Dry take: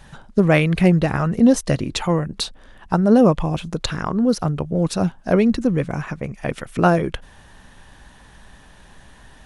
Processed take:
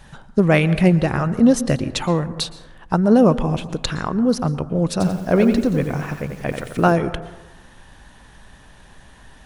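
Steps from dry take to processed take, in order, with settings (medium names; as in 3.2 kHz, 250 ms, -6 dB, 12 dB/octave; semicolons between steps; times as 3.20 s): plate-style reverb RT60 1.1 s, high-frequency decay 0.35×, pre-delay 105 ms, DRR 15 dB; 4.91–6.92 s: bit-crushed delay 89 ms, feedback 35%, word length 7-bit, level -6 dB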